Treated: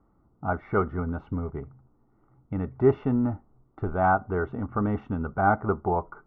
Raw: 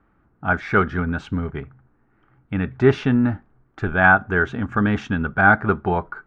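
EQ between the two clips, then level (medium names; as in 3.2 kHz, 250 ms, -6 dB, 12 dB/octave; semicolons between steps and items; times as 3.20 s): dynamic bell 170 Hz, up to -6 dB, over -32 dBFS, Q 0.79; Savitzky-Golay filter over 65 samples; distance through air 97 m; -2.0 dB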